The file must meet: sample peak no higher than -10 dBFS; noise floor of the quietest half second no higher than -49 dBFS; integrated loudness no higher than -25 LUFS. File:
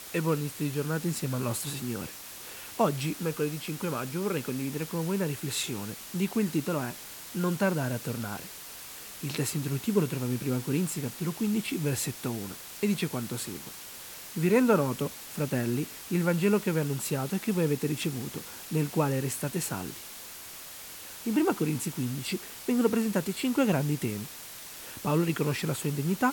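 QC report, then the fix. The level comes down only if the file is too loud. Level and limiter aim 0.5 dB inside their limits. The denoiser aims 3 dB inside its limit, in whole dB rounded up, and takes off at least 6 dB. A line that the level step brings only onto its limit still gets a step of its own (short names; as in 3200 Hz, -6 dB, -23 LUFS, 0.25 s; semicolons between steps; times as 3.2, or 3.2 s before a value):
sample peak -11.5 dBFS: OK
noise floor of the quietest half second -44 dBFS: fail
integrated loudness -30.0 LUFS: OK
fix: denoiser 8 dB, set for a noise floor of -44 dBFS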